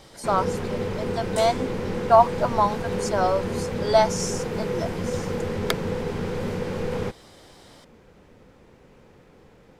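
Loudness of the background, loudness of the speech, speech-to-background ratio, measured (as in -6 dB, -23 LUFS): -28.5 LUFS, -24.0 LUFS, 4.5 dB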